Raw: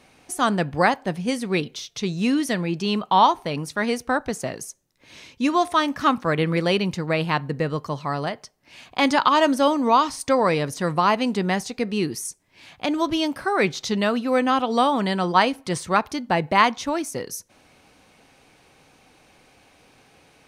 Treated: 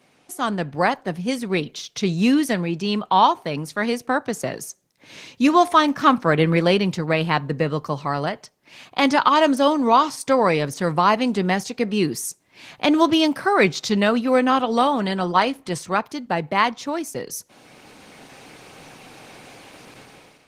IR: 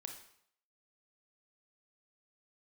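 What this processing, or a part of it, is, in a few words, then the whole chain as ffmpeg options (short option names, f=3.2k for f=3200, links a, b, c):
video call: -filter_complex "[0:a]asettb=1/sr,asplit=3[a][b][c];[a]atrim=end=5.734[d];[b]atrim=start=5.73:end=6.81,asetpts=PTS-STARTPTS,afade=t=in:d=0.004:c=qsin,afade=t=out:st=1.076:d=0.004:c=qsin,highshelf=f=3.3k:g=-2[e];[c]atrim=start=6.806[f];[d][e]acrossfade=d=0.004:c1=hsin:c2=qsin[g];[g][f]acrossfade=d=0.004:c1=qsin:c2=hsin,highpass=f=110:w=0.5412,highpass=f=110:w=1.3066,dynaudnorm=f=540:g=3:m=16dB,volume=-2.5dB" -ar 48000 -c:a libopus -b:a 16k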